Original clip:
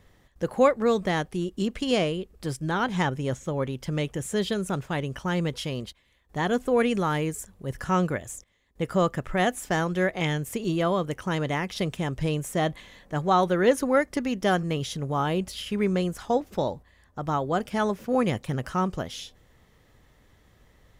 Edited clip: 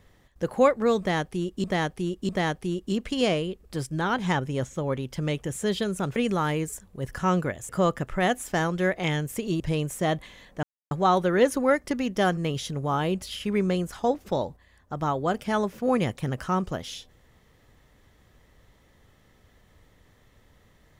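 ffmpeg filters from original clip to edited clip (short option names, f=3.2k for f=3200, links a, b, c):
-filter_complex "[0:a]asplit=7[a][b][c][d][e][f][g];[a]atrim=end=1.642[h];[b]atrim=start=0.988:end=1.642[i];[c]atrim=start=0.988:end=4.862[j];[d]atrim=start=6.818:end=8.352[k];[e]atrim=start=8.858:end=10.772[l];[f]atrim=start=12.138:end=13.17,asetpts=PTS-STARTPTS,afade=t=out:st=1.028:d=0.004:c=hsin,apad=pad_dur=0.28[m];[g]atrim=start=13.17,asetpts=PTS-STARTPTS,afade=t=in:d=0.004:c=hsin[n];[h][i]acrossfade=d=0.004:c1=hsin:c2=hsin[o];[o][j]acrossfade=d=0.004:c1=hsin:c2=hsin[p];[p][k]acrossfade=d=0.004:c1=hsin:c2=hsin[q];[q][l]acrossfade=d=0.004:c1=hsin:c2=hsin[r];[m][n]concat=n=2:v=0:a=1[s];[r][s]acrossfade=d=0.004:c1=hsin:c2=hsin"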